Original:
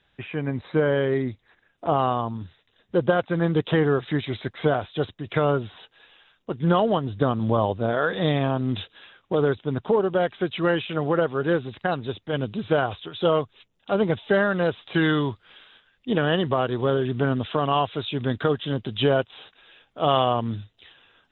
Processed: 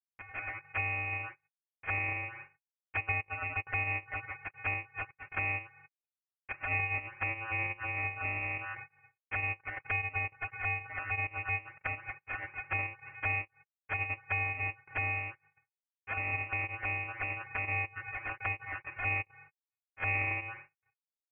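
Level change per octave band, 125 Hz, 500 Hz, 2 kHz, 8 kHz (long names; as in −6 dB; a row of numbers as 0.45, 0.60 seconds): −14.5 dB, −27.5 dB, −1.0 dB, can't be measured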